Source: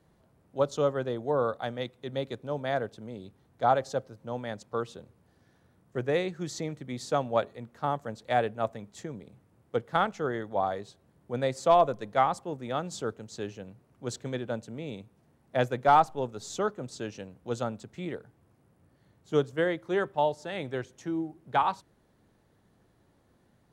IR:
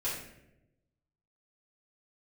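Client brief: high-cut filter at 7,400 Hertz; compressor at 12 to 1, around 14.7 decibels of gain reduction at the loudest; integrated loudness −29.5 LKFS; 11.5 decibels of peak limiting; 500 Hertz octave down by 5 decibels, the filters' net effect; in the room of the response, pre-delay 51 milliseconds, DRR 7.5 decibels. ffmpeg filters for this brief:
-filter_complex "[0:a]lowpass=7400,equalizer=frequency=500:width_type=o:gain=-6.5,acompressor=threshold=-33dB:ratio=12,alimiter=level_in=6.5dB:limit=-24dB:level=0:latency=1,volume=-6.5dB,asplit=2[link_01][link_02];[1:a]atrim=start_sample=2205,adelay=51[link_03];[link_02][link_03]afir=irnorm=-1:irlink=0,volume=-12.5dB[link_04];[link_01][link_04]amix=inputs=2:normalize=0,volume=13dB"

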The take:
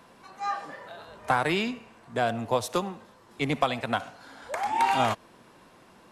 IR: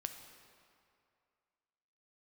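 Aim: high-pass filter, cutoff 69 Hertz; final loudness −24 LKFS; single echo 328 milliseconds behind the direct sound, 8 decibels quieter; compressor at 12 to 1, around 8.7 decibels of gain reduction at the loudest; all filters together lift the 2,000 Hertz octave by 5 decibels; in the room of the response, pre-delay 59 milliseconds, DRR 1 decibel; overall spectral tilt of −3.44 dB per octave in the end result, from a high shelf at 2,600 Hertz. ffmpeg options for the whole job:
-filter_complex "[0:a]highpass=69,equalizer=frequency=2000:width_type=o:gain=3.5,highshelf=frequency=2600:gain=6.5,acompressor=threshold=-26dB:ratio=12,aecho=1:1:328:0.398,asplit=2[link_01][link_02];[1:a]atrim=start_sample=2205,adelay=59[link_03];[link_02][link_03]afir=irnorm=-1:irlink=0,volume=1dB[link_04];[link_01][link_04]amix=inputs=2:normalize=0,volume=6dB"

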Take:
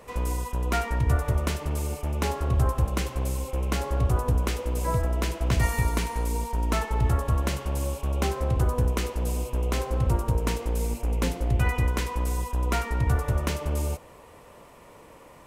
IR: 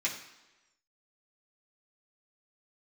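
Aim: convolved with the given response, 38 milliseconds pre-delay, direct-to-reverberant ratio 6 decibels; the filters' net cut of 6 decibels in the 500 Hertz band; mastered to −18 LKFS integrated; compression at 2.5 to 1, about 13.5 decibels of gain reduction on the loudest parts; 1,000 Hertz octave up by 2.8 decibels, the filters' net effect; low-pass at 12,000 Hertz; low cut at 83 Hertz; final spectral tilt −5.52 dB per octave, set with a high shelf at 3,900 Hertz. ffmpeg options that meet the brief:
-filter_complex "[0:a]highpass=83,lowpass=12000,equalizer=frequency=500:width_type=o:gain=-9,equalizer=frequency=1000:width_type=o:gain=6,highshelf=frequency=3900:gain=-5,acompressor=threshold=-43dB:ratio=2.5,asplit=2[link_01][link_02];[1:a]atrim=start_sample=2205,adelay=38[link_03];[link_02][link_03]afir=irnorm=-1:irlink=0,volume=-12dB[link_04];[link_01][link_04]amix=inputs=2:normalize=0,volume=23.5dB"

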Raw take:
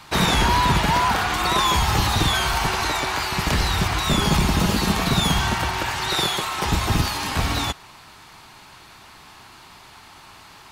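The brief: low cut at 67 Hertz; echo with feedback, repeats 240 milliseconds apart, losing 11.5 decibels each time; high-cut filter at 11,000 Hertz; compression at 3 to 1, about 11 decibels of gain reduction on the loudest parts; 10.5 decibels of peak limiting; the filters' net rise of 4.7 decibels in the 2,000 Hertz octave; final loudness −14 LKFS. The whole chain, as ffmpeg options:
ffmpeg -i in.wav -af "highpass=67,lowpass=11000,equalizer=frequency=2000:width_type=o:gain=6,acompressor=threshold=-30dB:ratio=3,alimiter=level_in=2dB:limit=-24dB:level=0:latency=1,volume=-2dB,aecho=1:1:240|480|720:0.266|0.0718|0.0194,volume=20.5dB" out.wav

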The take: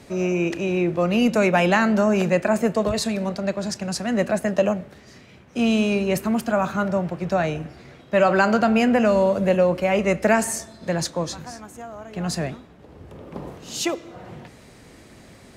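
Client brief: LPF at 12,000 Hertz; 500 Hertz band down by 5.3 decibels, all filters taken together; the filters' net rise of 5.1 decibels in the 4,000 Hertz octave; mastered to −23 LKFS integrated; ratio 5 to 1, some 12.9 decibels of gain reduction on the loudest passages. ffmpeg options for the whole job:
ffmpeg -i in.wav -af "lowpass=12000,equalizer=frequency=500:width_type=o:gain=-7,equalizer=frequency=4000:width_type=o:gain=7,acompressor=threshold=-31dB:ratio=5,volume=11dB" out.wav

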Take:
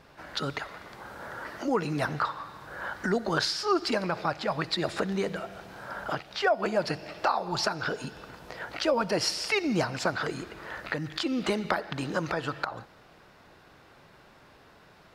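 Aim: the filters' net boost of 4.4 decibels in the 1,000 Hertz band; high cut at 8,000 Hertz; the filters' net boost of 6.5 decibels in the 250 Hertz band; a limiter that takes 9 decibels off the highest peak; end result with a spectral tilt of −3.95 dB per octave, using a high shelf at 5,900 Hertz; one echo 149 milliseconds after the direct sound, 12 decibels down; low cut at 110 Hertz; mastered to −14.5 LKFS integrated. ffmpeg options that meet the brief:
ffmpeg -i in.wav -af "highpass=110,lowpass=8000,equalizer=frequency=250:width_type=o:gain=8.5,equalizer=frequency=1000:width_type=o:gain=5.5,highshelf=frequency=5900:gain=-6,alimiter=limit=-18.5dB:level=0:latency=1,aecho=1:1:149:0.251,volume=15.5dB" out.wav

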